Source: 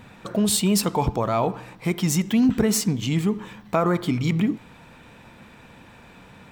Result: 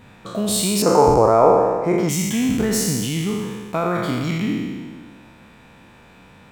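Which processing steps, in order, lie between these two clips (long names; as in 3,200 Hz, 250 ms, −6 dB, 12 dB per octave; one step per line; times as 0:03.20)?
peak hold with a decay on every bin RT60 1.62 s
0:00.82–0:02.09: drawn EQ curve 170 Hz 0 dB, 500 Hz +13 dB, 1,100 Hz +6 dB, 1,600 Hz +4 dB, 3,300 Hz −13 dB, 6,400 Hz 0 dB, 9,900 Hz −14 dB
level −3 dB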